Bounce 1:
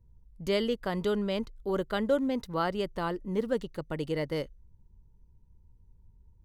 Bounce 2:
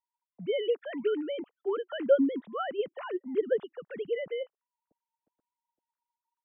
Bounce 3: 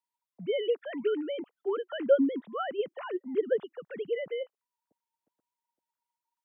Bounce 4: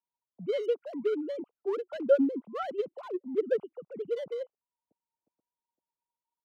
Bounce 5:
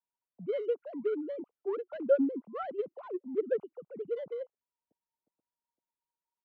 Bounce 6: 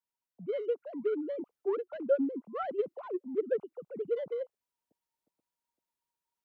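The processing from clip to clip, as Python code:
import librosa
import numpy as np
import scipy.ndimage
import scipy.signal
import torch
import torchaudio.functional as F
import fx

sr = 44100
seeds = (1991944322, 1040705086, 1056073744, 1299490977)

y1 = fx.sine_speech(x, sr)
y2 = scipy.signal.sosfilt(scipy.signal.butter(2, 100.0, 'highpass', fs=sr, output='sos'), y1)
y3 = fx.wiener(y2, sr, points=25)
y4 = scipy.signal.sosfilt(scipy.signal.butter(2, 2100.0, 'lowpass', fs=sr, output='sos'), y3)
y4 = y4 * 10.0 ** (-2.5 / 20.0)
y5 = fx.rider(y4, sr, range_db=3, speed_s=0.5)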